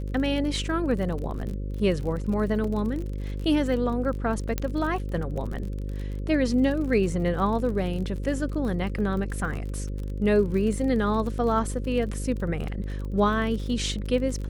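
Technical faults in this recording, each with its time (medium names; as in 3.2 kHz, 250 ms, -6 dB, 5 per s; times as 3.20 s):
buzz 50 Hz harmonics 11 -31 dBFS
crackle 40 per s -33 dBFS
2.64 s: dropout 3.4 ms
4.58 s: pop -12 dBFS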